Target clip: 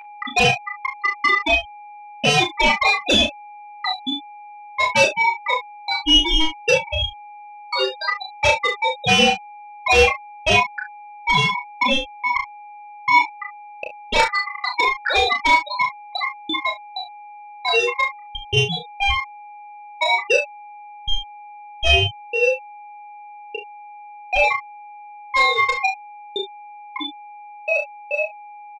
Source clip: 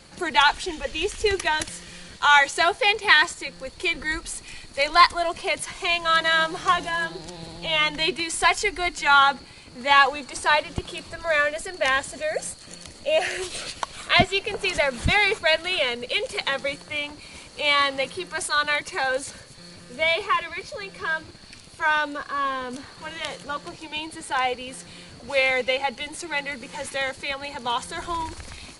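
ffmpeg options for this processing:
-filter_complex "[0:a]bandreject=f=60:t=h:w=6,bandreject=f=120:t=h:w=6,bandreject=f=180:t=h:w=6,bandreject=f=240:t=h:w=6,bandreject=f=300:t=h:w=6,bandreject=f=360:t=h:w=6,afftfilt=real='re*gte(hypot(re,im),0.447)':imag='im*gte(hypot(re,im),0.447)':win_size=1024:overlap=0.75,agate=range=0.00562:threshold=0.01:ratio=16:detection=peak,equalizer=f=900:w=0.4:g=2.5,acrossover=split=82|1600|5200[s0][s1][s2][s3];[s0]acompressor=threshold=0.00708:ratio=4[s4];[s1]acompressor=threshold=0.141:ratio=4[s5];[s2]acompressor=threshold=0.0178:ratio=4[s6];[s3]acompressor=threshold=0.00141:ratio=4[s7];[s4][s5][s6][s7]amix=inputs=4:normalize=0,aeval=exprs='val(0)+0.00794*sin(2*PI*770*n/s)':c=same,aeval=exprs='val(0)*sin(2*PI*1600*n/s)':c=same,aeval=exprs='0.376*(cos(1*acos(clip(val(0)/0.376,-1,1)))-cos(1*PI/2))+0.00211*(cos(4*acos(clip(val(0)/0.376,-1,1)))-cos(4*PI/2))+0.133*(cos(5*acos(clip(val(0)/0.376,-1,1)))-cos(5*PI/2))+0.00237*(cos(6*acos(clip(val(0)/0.376,-1,1)))-cos(6*PI/2))':c=same,asplit=2[s8][s9];[s9]adelay=31,volume=0.562[s10];[s8][s10]amix=inputs=2:normalize=0,asplit=2[s11][s12];[s12]aecho=0:1:29|39:0.376|0.422[s13];[s11][s13]amix=inputs=2:normalize=0"

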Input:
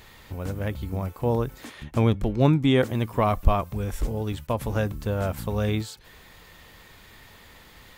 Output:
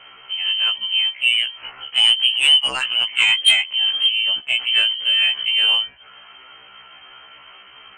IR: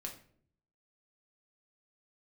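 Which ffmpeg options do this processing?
-af "lowpass=f=2700:t=q:w=0.5098,lowpass=f=2700:t=q:w=0.6013,lowpass=f=2700:t=q:w=0.9,lowpass=f=2700:t=q:w=2.563,afreqshift=-3200,aeval=exprs='0.596*sin(PI/2*1.78*val(0)/0.596)':c=same,afftfilt=real='re*1.73*eq(mod(b,3),0)':imag='im*1.73*eq(mod(b,3),0)':win_size=2048:overlap=0.75"

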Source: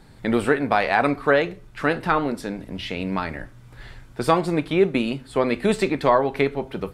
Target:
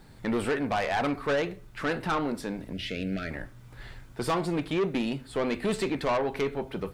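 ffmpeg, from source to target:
-filter_complex "[0:a]acrusher=bits=10:mix=0:aa=0.000001,asoftclip=type=tanh:threshold=0.112,asettb=1/sr,asplit=3[s0][s1][s2];[s0]atrim=end=2.734[s3];[s1]atrim=start=2.73:end=3.31,asetpts=PTS-STARTPTS,afade=t=in:d=0.004:c=qsin,afade=t=out:st=0.576:d=0.004:c=qsin,asuperstop=centerf=970:order=8:qfactor=1.5[s4];[s2]atrim=start=3.306[s5];[s3][s4]acrossfade=d=0.004:c1=hsin:c2=qsin[s6];[s6][s5]acrossfade=d=0.004:c1=qsin:c2=hsin,volume=0.708"

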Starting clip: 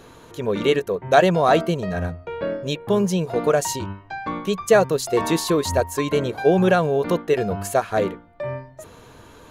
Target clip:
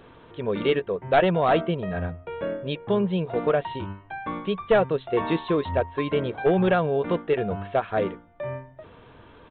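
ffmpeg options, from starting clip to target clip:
-af "aeval=exprs='clip(val(0),-1,0.266)':c=same,aresample=8000,aresample=44100,volume=0.668"

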